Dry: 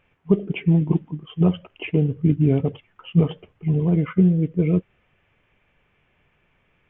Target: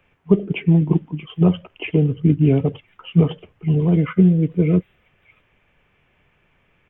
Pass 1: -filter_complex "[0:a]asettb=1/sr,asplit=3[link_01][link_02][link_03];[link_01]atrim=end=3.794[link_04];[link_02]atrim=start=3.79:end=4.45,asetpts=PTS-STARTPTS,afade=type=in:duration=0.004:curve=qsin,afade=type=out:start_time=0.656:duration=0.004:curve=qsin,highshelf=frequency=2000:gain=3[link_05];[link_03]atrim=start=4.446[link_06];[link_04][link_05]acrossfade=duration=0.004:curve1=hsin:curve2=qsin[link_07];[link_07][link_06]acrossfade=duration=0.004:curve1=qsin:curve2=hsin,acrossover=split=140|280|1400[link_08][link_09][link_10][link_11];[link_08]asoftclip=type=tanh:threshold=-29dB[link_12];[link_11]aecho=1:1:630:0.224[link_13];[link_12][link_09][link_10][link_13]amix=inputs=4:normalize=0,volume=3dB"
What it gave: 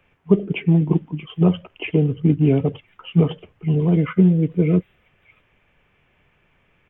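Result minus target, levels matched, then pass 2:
soft clipping: distortion +13 dB
-filter_complex "[0:a]asettb=1/sr,asplit=3[link_01][link_02][link_03];[link_01]atrim=end=3.794[link_04];[link_02]atrim=start=3.79:end=4.45,asetpts=PTS-STARTPTS,afade=type=in:duration=0.004:curve=qsin,afade=type=out:start_time=0.656:duration=0.004:curve=qsin,highshelf=frequency=2000:gain=3[link_05];[link_03]atrim=start=4.446[link_06];[link_04][link_05]acrossfade=duration=0.004:curve1=hsin:curve2=qsin[link_07];[link_07][link_06]acrossfade=duration=0.004:curve1=qsin:curve2=hsin,acrossover=split=140|280|1400[link_08][link_09][link_10][link_11];[link_08]asoftclip=type=tanh:threshold=-18.5dB[link_12];[link_11]aecho=1:1:630:0.224[link_13];[link_12][link_09][link_10][link_13]amix=inputs=4:normalize=0,volume=3dB"

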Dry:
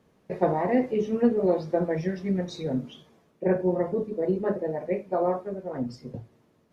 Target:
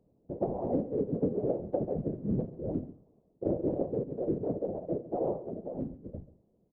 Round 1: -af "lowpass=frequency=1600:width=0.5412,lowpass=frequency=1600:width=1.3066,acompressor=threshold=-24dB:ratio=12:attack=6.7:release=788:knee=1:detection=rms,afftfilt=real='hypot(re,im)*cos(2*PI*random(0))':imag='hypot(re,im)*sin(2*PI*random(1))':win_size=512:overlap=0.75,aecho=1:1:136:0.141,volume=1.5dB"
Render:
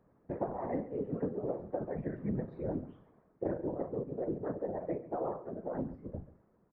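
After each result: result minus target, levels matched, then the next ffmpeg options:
2,000 Hz band +19.0 dB; downward compressor: peak gain reduction +6 dB
-af "lowpass=frequency=630:width=0.5412,lowpass=frequency=630:width=1.3066,acompressor=threshold=-24dB:ratio=12:attack=6.7:release=788:knee=1:detection=rms,afftfilt=real='hypot(re,im)*cos(2*PI*random(0))':imag='hypot(re,im)*sin(2*PI*random(1))':win_size=512:overlap=0.75,aecho=1:1:136:0.141,volume=1.5dB"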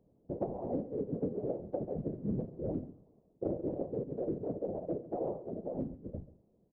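downward compressor: peak gain reduction +5.5 dB
-af "lowpass=frequency=630:width=0.5412,lowpass=frequency=630:width=1.3066,acompressor=threshold=-18dB:ratio=12:attack=6.7:release=788:knee=1:detection=rms,afftfilt=real='hypot(re,im)*cos(2*PI*random(0))':imag='hypot(re,im)*sin(2*PI*random(1))':win_size=512:overlap=0.75,aecho=1:1:136:0.141,volume=1.5dB"

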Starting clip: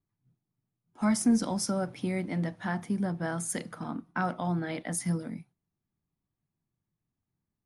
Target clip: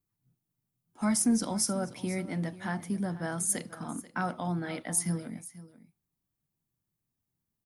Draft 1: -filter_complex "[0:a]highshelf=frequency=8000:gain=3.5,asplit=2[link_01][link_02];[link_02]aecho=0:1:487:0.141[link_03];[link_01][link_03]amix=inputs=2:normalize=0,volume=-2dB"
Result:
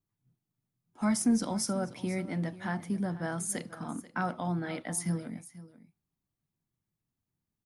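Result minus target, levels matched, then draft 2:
8,000 Hz band −4.0 dB
-filter_complex "[0:a]highshelf=frequency=8000:gain=13,asplit=2[link_01][link_02];[link_02]aecho=0:1:487:0.141[link_03];[link_01][link_03]amix=inputs=2:normalize=0,volume=-2dB"

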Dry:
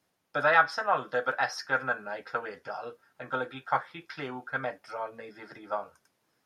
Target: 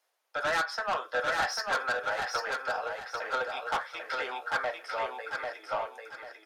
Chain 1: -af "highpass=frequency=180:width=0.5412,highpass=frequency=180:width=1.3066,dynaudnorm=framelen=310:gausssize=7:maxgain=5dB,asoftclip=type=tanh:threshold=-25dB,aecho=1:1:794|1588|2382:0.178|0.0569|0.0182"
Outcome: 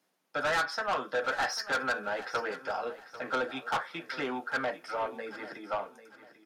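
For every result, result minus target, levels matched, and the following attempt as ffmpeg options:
250 Hz band +10.0 dB; echo-to-direct −11 dB
-af "highpass=frequency=500:width=0.5412,highpass=frequency=500:width=1.3066,dynaudnorm=framelen=310:gausssize=7:maxgain=5dB,asoftclip=type=tanh:threshold=-25dB,aecho=1:1:794|1588|2382:0.178|0.0569|0.0182"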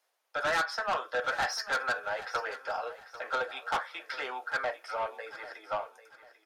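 echo-to-direct −11 dB
-af "highpass=frequency=500:width=0.5412,highpass=frequency=500:width=1.3066,dynaudnorm=framelen=310:gausssize=7:maxgain=5dB,asoftclip=type=tanh:threshold=-25dB,aecho=1:1:794|1588|2382|3176:0.631|0.202|0.0646|0.0207"

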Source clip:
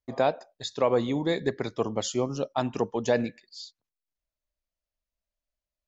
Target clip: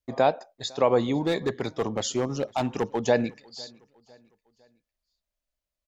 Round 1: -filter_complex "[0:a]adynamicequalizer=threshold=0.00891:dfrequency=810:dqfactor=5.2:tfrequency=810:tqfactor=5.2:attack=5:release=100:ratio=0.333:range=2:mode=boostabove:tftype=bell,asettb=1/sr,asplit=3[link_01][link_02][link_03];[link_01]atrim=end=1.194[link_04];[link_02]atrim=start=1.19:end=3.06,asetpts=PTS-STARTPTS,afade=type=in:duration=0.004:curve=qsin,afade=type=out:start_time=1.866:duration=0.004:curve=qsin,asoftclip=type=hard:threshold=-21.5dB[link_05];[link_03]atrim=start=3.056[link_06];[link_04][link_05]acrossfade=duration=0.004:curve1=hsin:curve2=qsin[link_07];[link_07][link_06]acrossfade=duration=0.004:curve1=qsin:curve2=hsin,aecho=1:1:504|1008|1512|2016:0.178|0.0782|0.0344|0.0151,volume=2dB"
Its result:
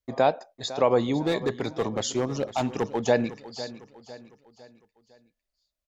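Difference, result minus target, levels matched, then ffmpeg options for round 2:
echo-to-direct +10.5 dB
-filter_complex "[0:a]adynamicequalizer=threshold=0.00891:dfrequency=810:dqfactor=5.2:tfrequency=810:tqfactor=5.2:attack=5:release=100:ratio=0.333:range=2:mode=boostabove:tftype=bell,asettb=1/sr,asplit=3[link_01][link_02][link_03];[link_01]atrim=end=1.194[link_04];[link_02]atrim=start=1.19:end=3.06,asetpts=PTS-STARTPTS,afade=type=in:duration=0.004:curve=qsin,afade=type=out:start_time=1.866:duration=0.004:curve=qsin,asoftclip=type=hard:threshold=-21.5dB[link_05];[link_03]atrim=start=3.056[link_06];[link_04][link_05]acrossfade=duration=0.004:curve1=hsin:curve2=qsin[link_07];[link_07][link_06]acrossfade=duration=0.004:curve1=qsin:curve2=hsin,aecho=1:1:504|1008|1512:0.0531|0.0234|0.0103,volume=2dB"

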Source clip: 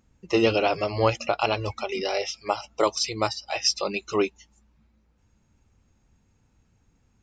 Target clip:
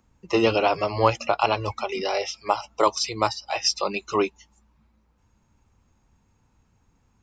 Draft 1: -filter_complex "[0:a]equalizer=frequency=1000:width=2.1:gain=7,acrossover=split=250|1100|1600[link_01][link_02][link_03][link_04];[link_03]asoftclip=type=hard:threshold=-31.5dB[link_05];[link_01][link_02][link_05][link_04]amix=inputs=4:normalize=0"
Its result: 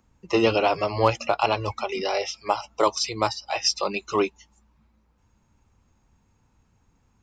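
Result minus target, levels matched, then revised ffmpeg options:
hard clipping: distortion +14 dB
-filter_complex "[0:a]equalizer=frequency=1000:width=2.1:gain=7,acrossover=split=250|1100|1600[link_01][link_02][link_03][link_04];[link_03]asoftclip=type=hard:threshold=-21.5dB[link_05];[link_01][link_02][link_05][link_04]amix=inputs=4:normalize=0"

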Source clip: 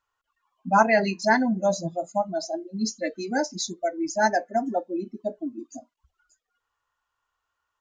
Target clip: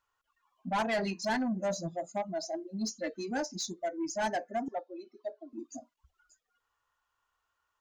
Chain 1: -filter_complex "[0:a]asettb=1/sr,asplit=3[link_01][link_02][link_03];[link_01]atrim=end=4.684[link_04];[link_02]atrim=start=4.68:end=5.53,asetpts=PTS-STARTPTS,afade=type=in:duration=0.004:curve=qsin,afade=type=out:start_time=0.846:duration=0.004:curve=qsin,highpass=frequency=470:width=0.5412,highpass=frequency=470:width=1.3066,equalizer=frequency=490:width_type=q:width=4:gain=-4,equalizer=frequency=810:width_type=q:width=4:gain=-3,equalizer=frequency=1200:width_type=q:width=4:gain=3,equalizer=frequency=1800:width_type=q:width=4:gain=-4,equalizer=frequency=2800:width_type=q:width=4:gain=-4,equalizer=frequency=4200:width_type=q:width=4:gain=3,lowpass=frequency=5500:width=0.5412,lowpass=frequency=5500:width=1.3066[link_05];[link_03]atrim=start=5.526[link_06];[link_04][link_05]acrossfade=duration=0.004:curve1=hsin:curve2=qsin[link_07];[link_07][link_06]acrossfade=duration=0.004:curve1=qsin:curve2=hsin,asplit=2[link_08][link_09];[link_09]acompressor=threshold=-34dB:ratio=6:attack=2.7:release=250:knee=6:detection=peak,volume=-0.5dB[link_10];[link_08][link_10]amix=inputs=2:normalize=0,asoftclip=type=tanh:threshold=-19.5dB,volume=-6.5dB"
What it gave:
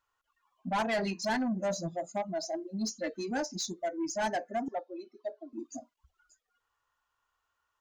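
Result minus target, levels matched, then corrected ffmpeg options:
downward compressor: peak gain reduction −7 dB
-filter_complex "[0:a]asettb=1/sr,asplit=3[link_01][link_02][link_03];[link_01]atrim=end=4.684[link_04];[link_02]atrim=start=4.68:end=5.53,asetpts=PTS-STARTPTS,afade=type=in:duration=0.004:curve=qsin,afade=type=out:start_time=0.846:duration=0.004:curve=qsin,highpass=frequency=470:width=0.5412,highpass=frequency=470:width=1.3066,equalizer=frequency=490:width_type=q:width=4:gain=-4,equalizer=frequency=810:width_type=q:width=4:gain=-3,equalizer=frequency=1200:width_type=q:width=4:gain=3,equalizer=frequency=1800:width_type=q:width=4:gain=-4,equalizer=frequency=2800:width_type=q:width=4:gain=-4,equalizer=frequency=4200:width_type=q:width=4:gain=3,lowpass=frequency=5500:width=0.5412,lowpass=frequency=5500:width=1.3066[link_05];[link_03]atrim=start=5.526[link_06];[link_04][link_05]acrossfade=duration=0.004:curve1=hsin:curve2=qsin[link_07];[link_07][link_06]acrossfade=duration=0.004:curve1=qsin:curve2=hsin,asplit=2[link_08][link_09];[link_09]acompressor=threshold=-42.5dB:ratio=6:attack=2.7:release=250:knee=6:detection=peak,volume=-0.5dB[link_10];[link_08][link_10]amix=inputs=2:normalize=0,asoftclip=type=tanh:threshold=-19.5dB,volume=-6.5dB"

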